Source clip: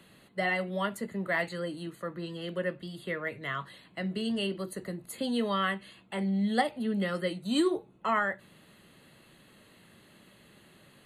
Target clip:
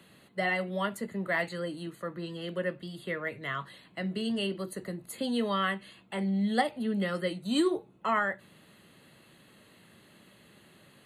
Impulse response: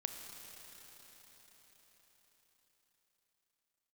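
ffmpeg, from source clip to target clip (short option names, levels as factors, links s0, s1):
-af "highpass=60"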